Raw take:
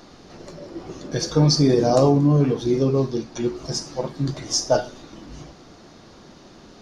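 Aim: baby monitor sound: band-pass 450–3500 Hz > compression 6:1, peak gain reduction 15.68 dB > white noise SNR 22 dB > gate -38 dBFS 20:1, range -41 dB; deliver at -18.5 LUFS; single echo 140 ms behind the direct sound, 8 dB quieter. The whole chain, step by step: band-pass 450–3500 Hz; delay 140 ms -8 dB; compression 6:1, threshold -31 dBFS; white noise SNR 22 dB; gate -38 dBFS 20:1, range -41 dB; trim +17 dB

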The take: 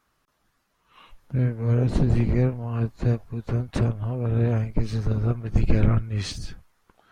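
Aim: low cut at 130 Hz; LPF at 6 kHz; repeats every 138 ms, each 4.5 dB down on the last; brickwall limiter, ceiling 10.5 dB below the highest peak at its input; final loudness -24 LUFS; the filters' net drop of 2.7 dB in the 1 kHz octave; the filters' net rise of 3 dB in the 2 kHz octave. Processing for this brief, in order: high-pass 130 Hz; low-pass 6 kHz; peaking EQ 1 kHz -5.5 dB; peaking EQ 2 kHz +5.5 dB; peak limiter -21.5 dBFS; feedback delay 138 ms, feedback 60%, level -4.5 dB; trim +6.5 dB

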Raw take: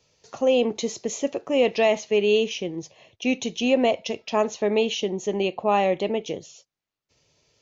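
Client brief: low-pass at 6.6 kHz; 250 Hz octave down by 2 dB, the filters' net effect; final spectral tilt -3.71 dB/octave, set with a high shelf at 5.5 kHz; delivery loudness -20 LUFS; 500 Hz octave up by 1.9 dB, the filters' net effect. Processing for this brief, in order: low-pass 6.6 kHz; peaking EQ 250 Hz -3 dB; peaking EQ 500 Hz +3 dB; treble shelf 5.5 kHz +3 dB; trim +2.5 dB

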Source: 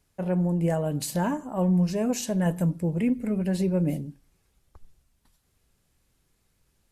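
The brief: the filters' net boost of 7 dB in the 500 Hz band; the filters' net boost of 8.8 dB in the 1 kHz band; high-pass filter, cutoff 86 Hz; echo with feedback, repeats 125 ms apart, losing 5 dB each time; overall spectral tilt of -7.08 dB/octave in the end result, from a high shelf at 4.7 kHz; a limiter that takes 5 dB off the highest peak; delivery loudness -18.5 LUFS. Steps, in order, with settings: high-pass 86 Hz; peaking EQ 500 Hz +6 dB; peaking EQ 1 kHz +9 dB; treble shelf 4.7 kHz -6 dB; peak limiter -14 dBFS; feedback delay 125 ms, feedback 56%, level -5 dB; trim +4 dB

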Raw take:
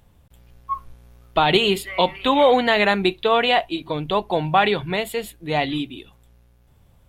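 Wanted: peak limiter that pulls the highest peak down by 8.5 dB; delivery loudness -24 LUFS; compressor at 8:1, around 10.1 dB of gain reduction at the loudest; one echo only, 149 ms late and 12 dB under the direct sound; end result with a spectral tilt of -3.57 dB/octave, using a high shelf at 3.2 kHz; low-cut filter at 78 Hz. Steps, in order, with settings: high-pass 78 Hz; treble shelf 3.2 kHz -4.5 dB; compression 8:1, threshold -22 dBFS; peak limiter -18.5 dBFS; delay 149 ms -12 dB; trim +5.5 dB

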